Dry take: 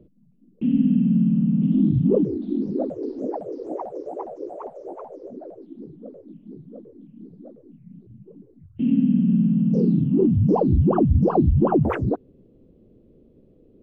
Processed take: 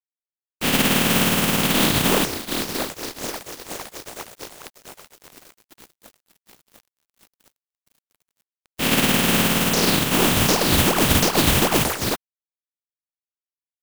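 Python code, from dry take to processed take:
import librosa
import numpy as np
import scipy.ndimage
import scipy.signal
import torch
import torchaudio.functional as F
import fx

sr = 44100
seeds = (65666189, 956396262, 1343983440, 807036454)

y = fx.spec_flatten(x, sr, power=0.22)
y = np.sign(y) * np.maximum(np.abs(y) - 10.0 ** (-36.0 / 20.0), 0.0)
y = F.gain(torch.from_numpy(y), 1.0).numpy()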